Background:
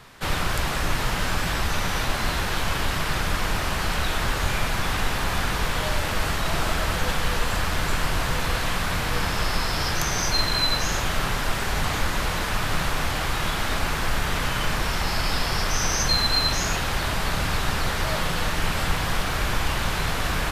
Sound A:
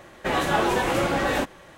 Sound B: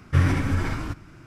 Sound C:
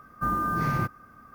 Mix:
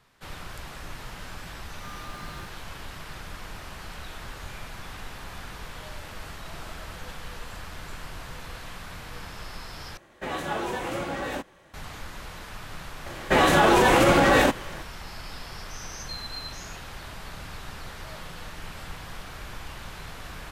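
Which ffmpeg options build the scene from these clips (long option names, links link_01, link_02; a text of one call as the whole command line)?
ffmpeg -i bed.wav -i cue0.wav -i cue1.wav -i cue2.wav -filter_complex "[1:a]asplit=2[link_01][link_02];[0:a]volume=-15dB[link_03];[link_02]alimiter=level_in=15dB:limit=-1dB:release=50:level=0:latency=1[link_04];[link_03]asplit=2[link_05][link_06];[link_05]atrim=end=9.974[link_07];[link_01]atrim=end=1.77,asetpts=PTS-STARTPTS,volume=-8dB[link_08];[link_06]atrim=start=11.736[link_09];[3:a]atrim=end=1.34,asetpts=PTS-STARTPTS,volume=-17.5dB,afade=type=in:duration=0.004:curve=hsin,afade=type=out:start_time=1.336:duration=0.004:curve=hsin,adelay=1610[link_10];[link_04]atrim=end=1.77,asetpts=PTS-STARTPTS,volume=-8dB,afade=type=in:duration=0.004:curve=hsin,afade=type=out:start_time=1.766:duration=0.004:curve=hsin,adelay=13060[link_11];[link_07][link_08]acrossfade=duration=0.004:curve1=hsin:curve2=hsin[link_12];[link_12][link_09]acrossfade=duration=0.004:curve1=hsin:curve2=hsin[link_13];[link_13][link_10][link_11]amix=inputs=3:normalize=0" out.wav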